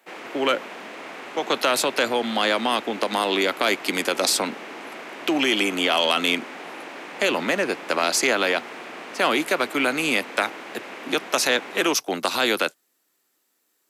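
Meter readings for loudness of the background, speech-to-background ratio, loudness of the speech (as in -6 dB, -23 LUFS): -36.5 LUFS, 14.0 dB, -22.5 LUFS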